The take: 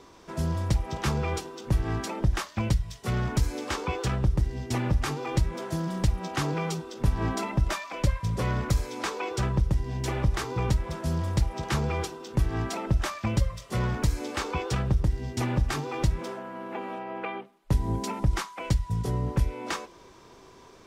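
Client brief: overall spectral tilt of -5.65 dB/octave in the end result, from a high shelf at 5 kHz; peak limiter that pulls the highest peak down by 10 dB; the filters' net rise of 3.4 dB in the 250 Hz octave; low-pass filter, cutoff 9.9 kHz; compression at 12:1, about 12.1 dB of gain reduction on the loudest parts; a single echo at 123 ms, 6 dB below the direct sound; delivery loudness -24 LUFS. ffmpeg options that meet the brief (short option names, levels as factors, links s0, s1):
-af "lowpass=9900,equalizer=f=250:t=o:g=5,highshelf=f=5000:g=5,acompressor=threshold=0.0316:ratio=12,alimiter=level_in=1.5:limit=0.0631:level=0:latency=1,volume=0.668,aecho=1:1:123:0.501,volume=4.22"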